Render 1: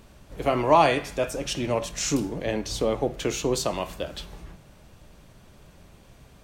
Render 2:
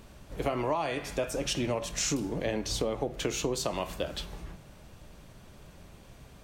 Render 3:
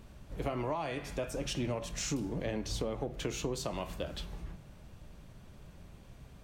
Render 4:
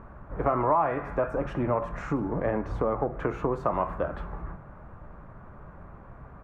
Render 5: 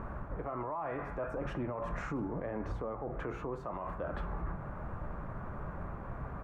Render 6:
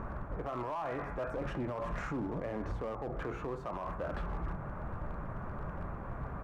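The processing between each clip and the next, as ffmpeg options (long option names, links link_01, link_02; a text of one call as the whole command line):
ffmpeg -i in.wav -af "acompressor=threshold=-26dB:ratio=12" out.wav
ffmpeg -i in.wav -filter_complex "[0:a]bass=frequency=250:gain=5,treble=frequency=4000:gain=-2,asplit=2[link_01][link_02];[link_02]asoftclip=type=tanh:threshold=-25dB,volume=-6dB[link_03];[link_01][link_03]amix=inputs=2:normalize=0,volume=-8.5dB" out.wav
ffmpeg -i in.wav -af "firequalizer=gain_entry='entry(200,0);entry(1200,12);entry(3100,-21);entry(4800,-28)':delay=0.05:min_phase=1,volume=5.5dB" out.wav
ffmpeg -i in.wav -af "areverse,acompressor=threshold=-33dB:ratio=6,areverse,alimiter=level_in=10dB:limit=-24dB:level=0:latency=1:release=119,volume=-10dB,volume=5dB" out.wav
ffmpeg -i in.wav -af "volume=32.5dB,asoftclip=hard,volume=-32.5dB,volume=1dB" out.wav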